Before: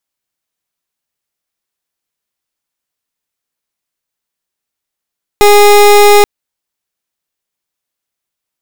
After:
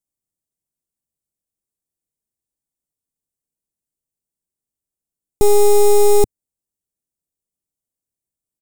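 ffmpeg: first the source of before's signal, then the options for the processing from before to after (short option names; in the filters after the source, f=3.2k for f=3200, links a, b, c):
-f lavfi -i "aevalsrc='0.631*(2*lt(mod(412*t,1),0.27)-1)':d=0.83:s=44100"
-af "firequalizer=gain_entry='entry(110,0);entry(1500,-27);entry(8200,-4);entry(12000,-8)':delay=0.05:min_phase=1"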